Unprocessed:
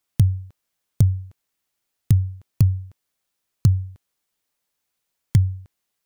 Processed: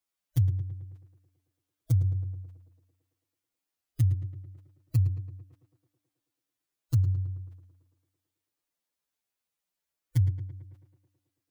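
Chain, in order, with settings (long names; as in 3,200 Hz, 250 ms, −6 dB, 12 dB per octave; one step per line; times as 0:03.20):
phase-vocoder stretch with locked phases 1.9×
tape delay 110 ms, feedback 75%, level −8 dB, low-pass 2,200 Hz
level −9 dB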